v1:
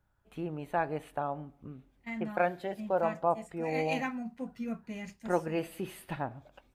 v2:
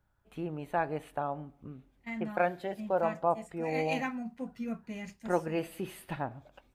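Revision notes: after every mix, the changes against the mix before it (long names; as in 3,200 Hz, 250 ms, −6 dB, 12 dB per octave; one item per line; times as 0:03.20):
nothing changed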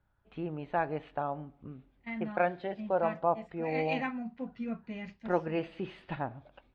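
master: add low-pass filter 4,100 Hz 24 dB per octave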